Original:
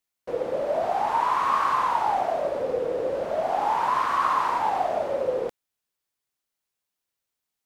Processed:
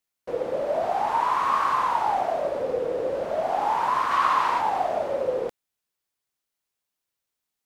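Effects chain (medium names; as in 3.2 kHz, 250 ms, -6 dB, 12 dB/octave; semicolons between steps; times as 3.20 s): 4.11–4.61 s: peaking EQ 2.9 kHz +5 dB 2 oct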